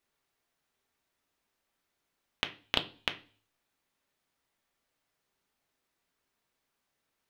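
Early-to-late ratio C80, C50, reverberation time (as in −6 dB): 21.5 dB, 15.5 dB, 0.40 s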